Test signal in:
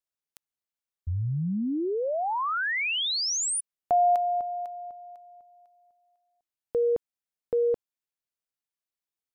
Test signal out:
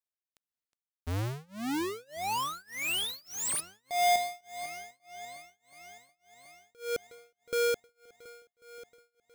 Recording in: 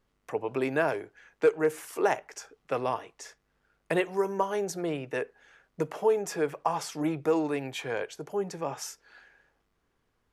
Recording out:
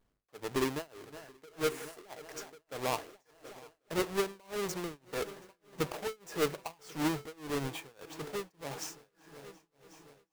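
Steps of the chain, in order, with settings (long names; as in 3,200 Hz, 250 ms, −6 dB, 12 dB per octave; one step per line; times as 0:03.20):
each half-wave held at its own peak
echo machine with several playback heads 364 ms, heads all three, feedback 59%, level −23 dB
amplitude tremolo 1.7 Hz, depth 98%
level −5.5 dB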